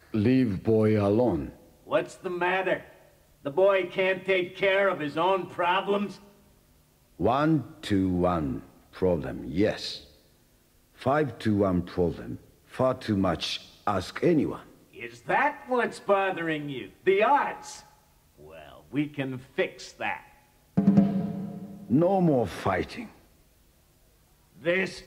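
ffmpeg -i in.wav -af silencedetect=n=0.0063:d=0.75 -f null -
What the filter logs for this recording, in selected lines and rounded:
silence_start: 6.27
silence_end: 7.20 | silence_duration: 0.93
silence_start: 10.06
silence_end: 10.99 | silence_duration: 0.92
silence_start: 23.10
silence_end: 24.57 | silence_duration: 1.47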